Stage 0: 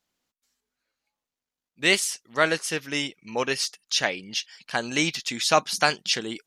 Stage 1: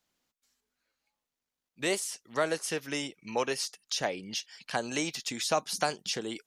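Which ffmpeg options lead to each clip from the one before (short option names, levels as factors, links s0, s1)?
-filter_complex "[0:a]acrossover=split=420|950|6400[s0][s1][s2][s3];[s0]acompressor=threshold=0.0112:ratio=4[s4];[s1]acompressor=threshold=0.0447:ratio=4[s5];[s2]acompressor=threshold=0.0141:ratio=4[s6];[s3]acompressor=threshold=0.0158:ratio=4[s7];[s4][s5][s6][s7]amix=inputs=4:normalize=0"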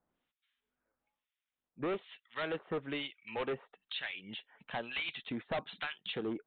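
-filter_complex "[0:a]acrossover=split=1400[s0][s1];[s0]aeval=exprs='val(0)*(1-1/2+1/2*cos(2*PI*1.1*n/s))':c=same[s2];[s1]aeval=exprs='val(0)*(1-1/2-1/2*cos(2*PI*1.1*n/s))':c=same[s3];[s2][s3]amix=inputs=2:normalize=0,aresample=8000,volume=53.1,asoftclip=hard,volume=0.0188,aresample=44100,volume=1.41"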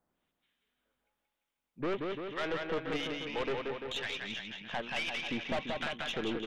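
-af "aecho=1:1:180|342|487.8|619|737.1:0.631|0.398|0.251|0.158|0.1,aeval=exprs='(tanh(39.8*val(0)+0.55)-tanh(0.55))/39.8':c=same,volume=1.68"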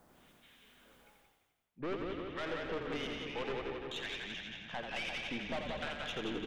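-filter_complex "[0:a]areverse,acompressor=mode=upward:threshold=0.01:ratio=2.5,areverse,asplit=9[s0][s1][s2][s3][s4][s5][s6][s7][s8];[s1]adelay=85,afreqshift=-32,volume=0.501[s9];[s2]adelay=170,afreqshift=-64,volume=0.295[s10];[s3]adelay=255,afreqshift=-96,volume=0.174[s11];[s4]adelay=340,afreqshift=-128,volume=0.104[s12];[s5]adelay=425,afreqshift=-160,volume=0.061[s13];[s6]adelay=510,afreqshift=-192,volume=0.0359[s14];[s7]adelay=595,afreqshift=-224,volume=0.0211[s15];[s8]adelay=680,afreqshift=-256,volume=0.0124[s16];[s0][s9][s10][s11][s12][s13][s14][s15][s16]amix=inputs=9:normalize=0,volume=0.562"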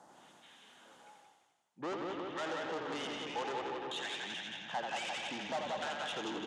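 -af "asoftclip=type=tanh:threshold=0.0141,highpass=210,equalizer=f=240:t=q:w=4:g=-4,equalizer=f=430:t=q:w=4:g=-4,equalizer=f=850:t=q:w=4:g=8,equalizer=f=2300:t=q:w=4:g=-6,equalizer=f=6700:t=q:w=4:g=5,lowpass=f=9700:w=0.5412,lowpass=f=9700:w=1.3066,volume=1.68"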